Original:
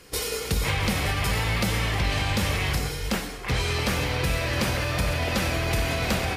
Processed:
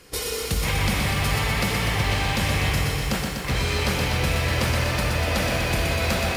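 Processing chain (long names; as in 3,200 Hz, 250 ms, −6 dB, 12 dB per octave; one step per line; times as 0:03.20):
feedback echo at a low word length 123 ms, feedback 80%, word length 8 bits, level −5 dB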